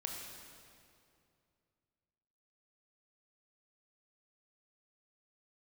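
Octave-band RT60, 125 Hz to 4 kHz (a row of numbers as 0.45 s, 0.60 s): 3.1 s, 2.8 s, 2.6 s, 2.4 s, 2.1 s, 1.9 s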